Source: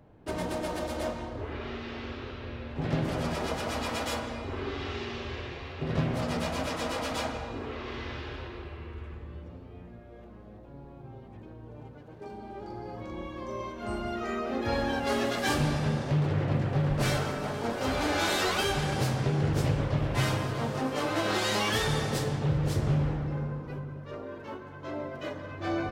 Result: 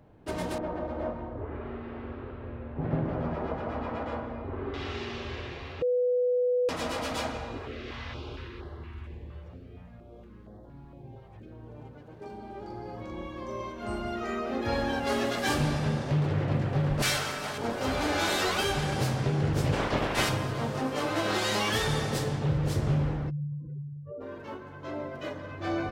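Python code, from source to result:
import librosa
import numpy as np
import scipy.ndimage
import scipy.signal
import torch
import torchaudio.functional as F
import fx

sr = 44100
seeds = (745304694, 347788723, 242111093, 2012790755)

y = fx.lowpass(x, sr, hz=1300.0, slope=12, at=(0.58, 4.74))
y = fx.filter_held_notch(y, sr, hz=4.3, low_hz=260.0, high_hz=2500.0, at=(7.57, 11.51), fade=0.02)
y = fx.tilt_shelf(y, sr, db=-7.5, hz=970.0, at=(17.02, 17.58))
y = fx.spec_clip(y, sr, under_db=18, at=(19.72, 20.28), fade=0.02)
y = fx.spec_expand(y, sr, power=3.2, at=(23.29, 24.2), fade=0.02)
y = fx.edit(y, sr, fx.bleep(start_s=5.82, length_s=0.87, hz=495.0, db=-22.5), tone=tone)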